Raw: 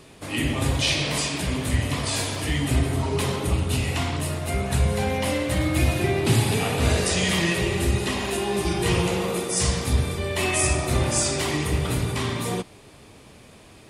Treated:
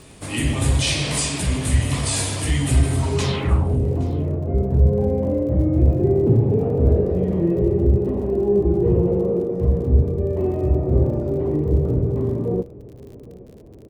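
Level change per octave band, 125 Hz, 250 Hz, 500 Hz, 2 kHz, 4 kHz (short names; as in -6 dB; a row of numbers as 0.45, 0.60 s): +5.5, +4.5, +6.0, -6.0, -3.5 dB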